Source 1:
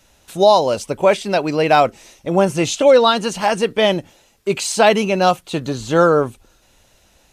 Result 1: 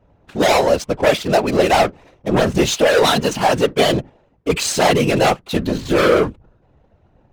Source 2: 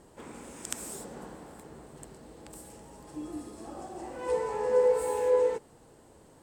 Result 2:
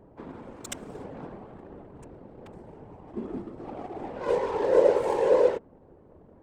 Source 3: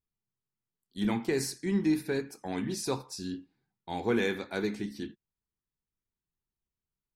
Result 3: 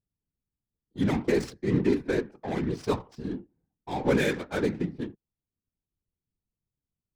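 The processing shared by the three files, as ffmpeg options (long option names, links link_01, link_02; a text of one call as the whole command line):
ffmpeg -i in.wav -af "aeval=exprs='0.794*(cos(1*acos(clip(val(0)/0.794,-1,1)))-cos(1*PI/2))+0.355*(cos(5*acos(clip(val(0)/0.794,-1,1)))-cos(5*PI/2))':channel_layout=same,adynamicsmooth=sensitivity=3:basefreq=640,afftfilt=real='hypot(re,im)*cos(2*PI*random(0))':imag='hypot(re,im)*sin(2*PI*random(1))':win_size=512:overlap=0.75" out.wav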